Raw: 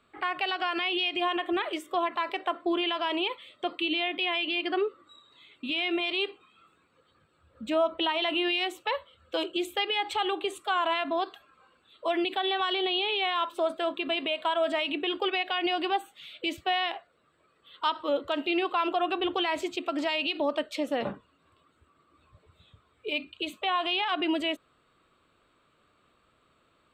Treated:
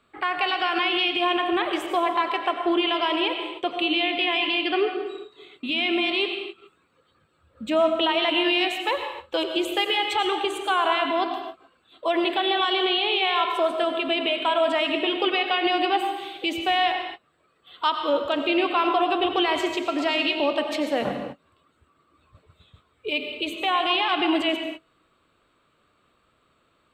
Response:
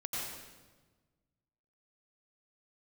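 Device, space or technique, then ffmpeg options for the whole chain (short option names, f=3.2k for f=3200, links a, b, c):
keyed gated reverb: -filter_complex "[0:a]asplit=3[a][b][c];[1:a]atrim=start_sample=2205[d];[b][d]afir=irnorm=-1:irlink=0[e];[c]apad=whole_len=1187858[f];[e][f]sidechaingate=range=-33dB:threshold=-57dB:ratio=16:detection=peak,volume=-4dB[g];[a][g]amix=inputs=2:normalize=0,volume=1.5dB"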